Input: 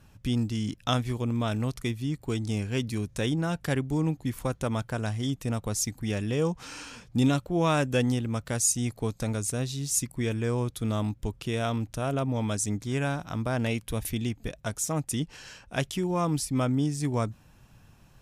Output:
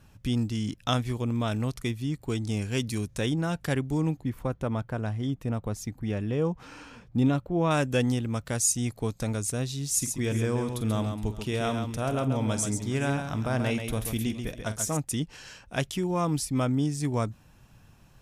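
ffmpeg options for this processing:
-filter_complex "[0:a]asettb=1/sr,asplit=3[a][b][c];[a]atrim=end=2.614[d];[b]atrim=start=2.61:end=3.08,asetpts=PTS-STARTPTS,afade=t=in:d=0.004:c=qsin,afade=t=out:st=0.466:d=0.004:c=qsin,equalizer=f=9.3k:t=o:w=2.1:g=6[e];[c]atrim=start=3.076[f];[d][e]acrossfade=d=0.004:c1=hsin:c2=qsin[g];[g][f]acrossfade=d=0.004:c1=qsin:c2=hsin,asettb=1/sr,asplit=3[h][i][j];[h]atrim=end=4.214[k];[i]atrim=start=4.21:end=7.71,asetpts=PTS-STARTPTS,afade=t=in:d=0.004:c=qsin,afade=t=out:st=3.496:d=0.004:c=qsin,equalizer=f=8.3k:w=0.34:g=-13.5[l];[j]atrim=start=7.706[m];[k][l]acrossfade=d=0.004:c1=hsin:c2=qsin[n];[n][m]acrossfade=d=0.004:c1=qsin:c2=hsin,asettb=1/sr,asplit=3[o][p][q];[o]atrim=end=9.884[r];[p]atrim=start=9.88:end=14.97,asetpts=PTS-STARTPTS,afade=t=in:d=0.004:c=qsin,afade=t=out:st=5.086:d=0.004:c=qsin,aecho=1:1:46|135|416:0.224|0.473|0.112,atrim=end_sample=224469[s];[q]atrim=start=14.966[t];[r][s]acrossfade=d=0.004:c1=hsin:c2=qsin[u];[u][t]acrossfade=d=0.004:c1=qsin:c2=hsin"

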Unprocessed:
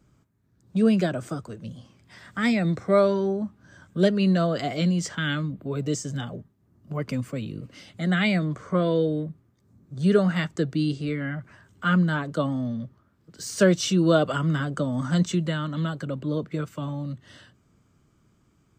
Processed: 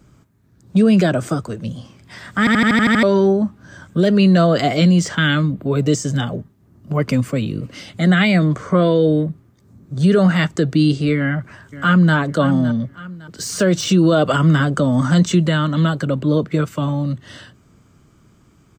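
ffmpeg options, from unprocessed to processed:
-filter_complex "[0:a]asplit=2[a][b];[b]afade=t=in:st=11.16:d=0.01,afade=t=out:st=12.15:d=0.01,aecho=0:1:560|1120|1680:0.188365|0.0659277|0.0230747[c];[a][c]amix=inputs=2:normalize=0,asplit=9[d][e][f][g][h][i][j][k][l];[d]atrim=end=2.472[m];[e]atrim=start=2.388:end=2.472[n];[f]atrim=start=2.388:end=2.472[o];[g]atrim=start=2.388:end=2.472[p];[h]atrim=start=2.388:end=2.472[q];[i]atrim=start=2.388:end=2.472[r];[j]atrim=start=2.388:end=2.472[s];[k]atrim=start=2.388:end=2.472[t];[l]atrim=start=3.028[u];[m][n]acrossfade=d=0.004:c1=hsin:c2=hsin[v];[v][o]acrossfade=d=0.004:c1=hsin:c2=hsin[w];[w][p]acrossfade=d=0.004:c1=hsin:c2=hsin[x];[x][q]acrossfade=d=0.004:c1=hsin:c2=hsin[y];[y][r]acrossfade=d=0.004:c1=hsin:c2=hsin[z];[z][s]acrossfade=d=0.004:c1=hsin:c2=hsin[aa];[aa][t]acrossfade=d=0.004:c1=hsin:c2=hsin[ab];[ab][u]acrossfade=d=0.004:c1=hsin:c2=hsin,deesser=0.7,alimiter=level_in=16dB:limit=-1dB:release=50:level=0:latency=1,volume=-5dB"

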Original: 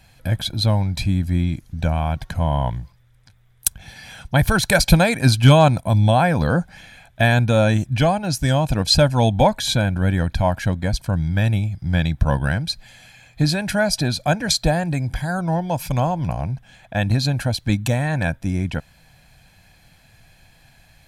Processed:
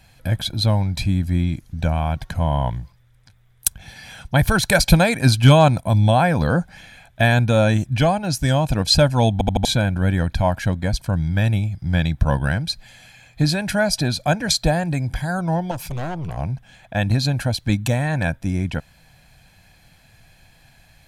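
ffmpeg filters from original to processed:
-filter_complex "[0:a]asettb=1/sr,asplit=3[a][b][c];[a]atrim=end=15.714[d];[b]atrim=start=15.71:end=16.37,asetpts=PTS-STARTPTS,afade=t=in:d=0.004:c=qsin,afade=t=out:st=0.656:d=0.004:c=qsin,aeval=exprs='(tanh(15.8*val(0)+0.4)-tanh(0.4))/15.8':c=same[e];[c]atrim=start=16.366[f];[d][e]acrossfade=d=0.004:c1=hsin:c2=qsin[g];[g][f]acrossfade=d=0.004:c1=qsin:c2=hsin,asplit=5[h][i][j][k][l];[h]atrim=end=9.412[m];[i]atrim=start=9.328:end=9.412[n];[j]atrim=start=9.328:end=9.412[o];[k]atrim=start=9.328:end=9.412[p];[l]atrim=start=9.648[q];[m][n]acrossfade=d=0.004:c1=hsin:c2=hsin[r];[r][o]acrossfade=d=0.004:c1=hsin:c2=hsin[s];[s][p]acrossfade=d=0.004:c1=hsin:c2=hsin[t];[t][q]acrossfade=d=0.004:c1=hsin:c2=hsin"

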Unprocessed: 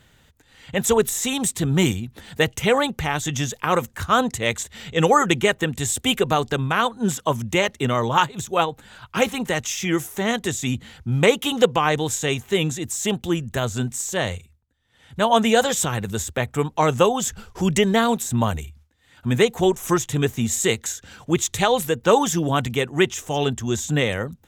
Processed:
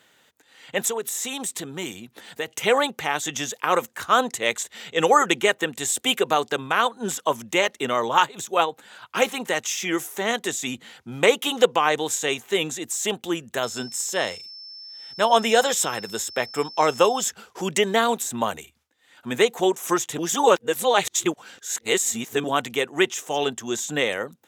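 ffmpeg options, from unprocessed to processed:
-filter_complex "[0:a]asettb=1/sr,asplit=3[a][b][c];[a]atrim=end=0.884[d];[b]atrim=start=0.88:end=2.52,asetpts=PTS-STARTPTS,afade=t=in:d=0.004:c=qsin,afade=t=out:st=1.636:d=0.004:c=qsin,acompressor=threshold=-25dB:ratio=3:attack=3.2:release=140:knee=1:detection=peak[e];[c]atrim=start=2.516[f];[d][e]acrossfade=d=0.004:c1=hsin:c2=qsin[g];[g][f]acrossfade=d=0.004:c1=qsin:c2=hsin,asettb=1/sr,asplit=3[h][i][j];[h]atrim=end=13.634[k];[i]atrim=start=13.63:end=17.31,asetpts=PTS-STARTPTS,afade=t=in:d=0.004:c=qsin,afade=t=out:st=3.676:d=0.004:c=qsin,aeval=exprs='val(0)+0.0126*sin(2*PI*5300*n/s)':c=same[l];[j]atrim=start=17.306[m];[k][l]acrossfade=d=0.004:c1=hsin:c2=qsin[n];[n][m]acrossfade=d=0.004:c1=qsin:c2=hsin,asplit=3[o][p][q];[o]atrim=end=20.182[r];[p]atrim=start=20.178:end=22.442,asetpts=PTS-STARTPTS,areverse[s];[q]atrim=start=22.438[t];[r][s]acrossfade=d=0.004:c1=hsin:c2=hsin[u];[u][t]acrossfade=d=0.004:c1=hsin:c2=hsin,highpass=340"

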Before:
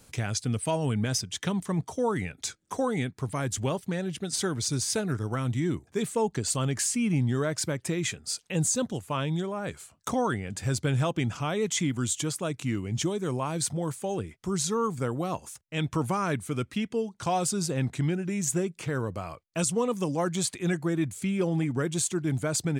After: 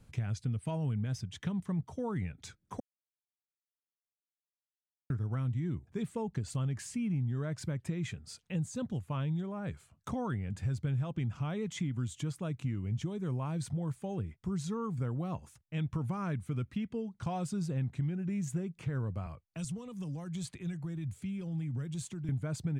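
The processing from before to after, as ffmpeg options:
-filter_complex "[0:a]asettb=1/sr,asplit=3[a][b][c];[a]atrim=end=19.264[d];[b]atrim=start=19.26:end=22.29,asetpts=PTS-STARTPTS,afade=t=in:d=0.004:c=qsin,afade=t=out:st=3.026:d=0.004:c=qsin,acrossover=split=120|3000[e][f][g];[f]acompressor=threshold=-36dB:ratio=6:attack=3.2:release=140:knee=2.83:detection=peak[h];[e][h][g]amix=inputs=3:normalize=0[i];[c]atrim=start=22.286[j];[d][i]acrossfade=d=0.004:c1=hsin:c2=qsin[k];[k][j]acrossfade=d=0.004:c1=qsin:c2=hsin,asplit=3[l][m][n];[l]atrim=end=2.8,asetpts=PTS-STARTPTS,afade=t=out:st=2.796:d=0.004:c=hsin[o];[m]atrim=start=2.8:end=5.1,asetpts=PTS-STARTPTS,volume=0[p];[n]atrim=start=5.1,asetpts=PTS-STARTPTS,afade=t=in:d=0.004:c=hsin[q];[o][p][q]concat=n=3:v=0:a=1,bass=f=250:g=12,treble=f=4k:g=-9,acompressor=threshold=-21dB:ratio=5,equalizer=f=320:w=1.5:g=-2.5,volume=-9dB"

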